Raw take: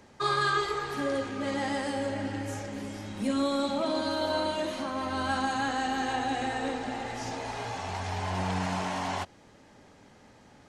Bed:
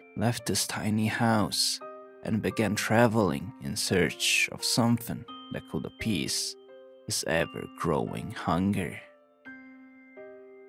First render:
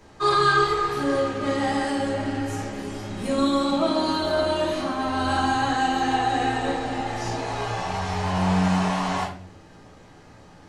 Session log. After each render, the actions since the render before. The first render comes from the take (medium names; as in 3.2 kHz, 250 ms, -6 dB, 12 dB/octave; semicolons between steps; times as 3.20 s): simulated room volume 49 m³, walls mixed, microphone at 1.1 m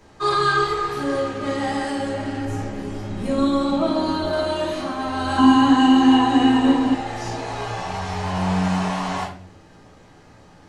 2.45–4.33 s: tilt EQ -1.5 dB/octave; 5.38–6.95 s: small resonant body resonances 260/1000/2900 Hz, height 16 dB, ringing for 55 ms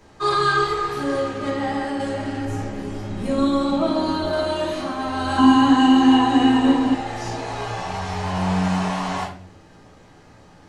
1.49–1.99 s: treble shelf 6.1 kHz -> 3.6 kHz -10.5 dB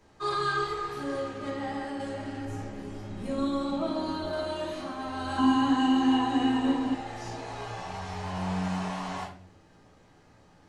trim -9.5 dB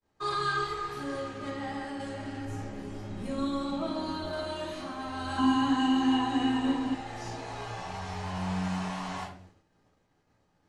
expander -48 dBFS; dynamic bell 480 Hz, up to -4 dB, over -39 dBFS, Q 0.79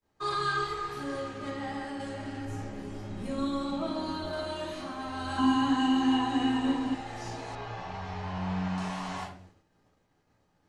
7.55–8.78 s: distance through air 140 m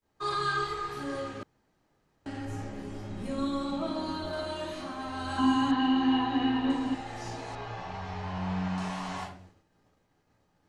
1.43–2.26 s: room tone; 5.71–6.70 s: low-pass 4.6 kHz 24 dB/octave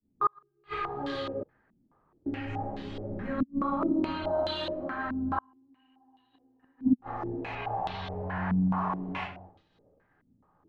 inverted gate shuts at -21 dBFS, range -41 dB; step-sequenced low-pass 4.7 Hz 240–3700 Hz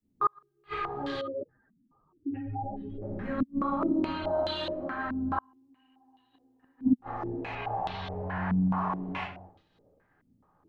1.21–3.02 s: spectral contrast enhancement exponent 2.2